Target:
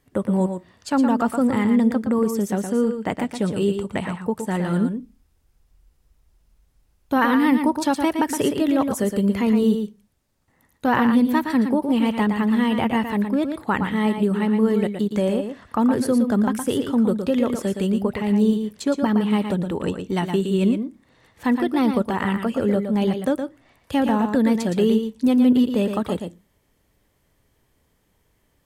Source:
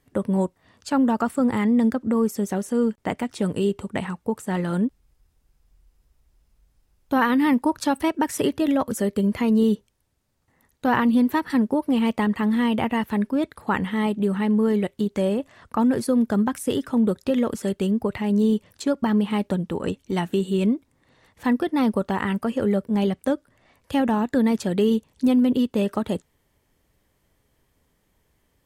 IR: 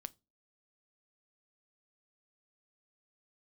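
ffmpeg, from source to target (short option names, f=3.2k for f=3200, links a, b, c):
-filter_complex "[0:a]asplit=2[a][b];[1:a]atrim=start_sample=2205,adelay=116[c];[b][c]afir=irnorm=-1:irlink=0,volume=-2.5dB[d];[a][d]amix=inputs=2:normalize=0,volume=1dB"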